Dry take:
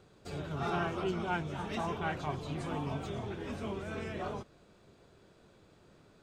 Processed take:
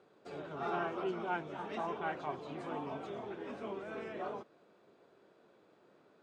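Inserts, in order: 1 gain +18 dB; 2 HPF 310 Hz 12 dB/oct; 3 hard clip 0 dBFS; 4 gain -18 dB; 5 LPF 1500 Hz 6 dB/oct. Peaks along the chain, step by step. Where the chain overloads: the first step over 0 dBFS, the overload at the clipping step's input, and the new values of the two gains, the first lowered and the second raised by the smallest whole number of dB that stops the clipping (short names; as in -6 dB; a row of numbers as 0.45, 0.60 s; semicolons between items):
-2.5, -4.0, -4.0, -22.0, -23.0 dBFS; no overload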